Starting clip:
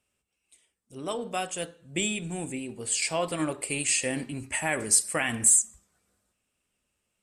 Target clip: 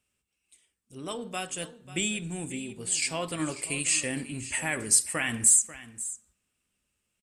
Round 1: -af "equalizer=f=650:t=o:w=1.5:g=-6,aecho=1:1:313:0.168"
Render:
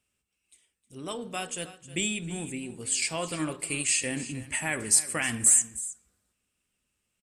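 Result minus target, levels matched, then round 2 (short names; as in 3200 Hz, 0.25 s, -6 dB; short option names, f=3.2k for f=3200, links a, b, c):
echo 0.228 s early
-af "equalizer=f=650:t=o:w=1.5:g=-6,aecho=1:1:541:0.168"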